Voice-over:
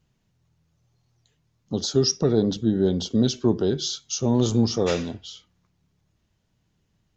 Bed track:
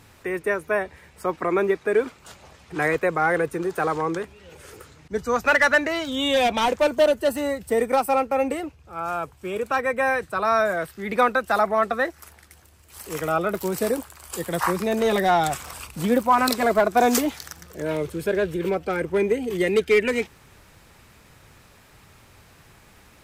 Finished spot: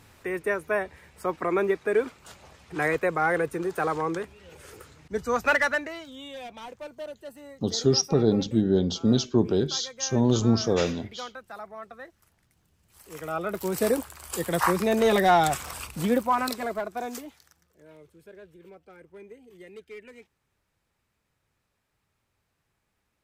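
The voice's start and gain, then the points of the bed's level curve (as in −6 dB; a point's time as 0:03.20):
5.90 s, −1.0 dB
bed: 0:05.50 −3 dB
0:06.33 −20 dB
0:12.54 −20 dB
0:13.87 0 dB
0:15.89 0 dB
0:17.75 −25 dB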